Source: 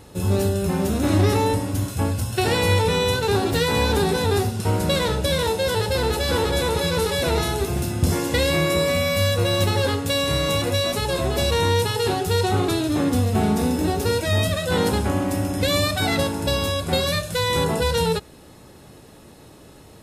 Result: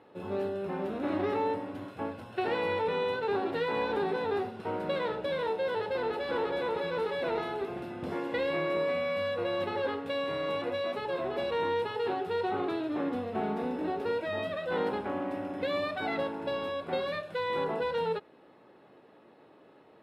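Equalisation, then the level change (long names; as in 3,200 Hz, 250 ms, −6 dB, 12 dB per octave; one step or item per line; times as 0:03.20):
high-pass filter 340 Hz 12 dB per octave
high-frequency loss of the air 480 metres
−5.5 dB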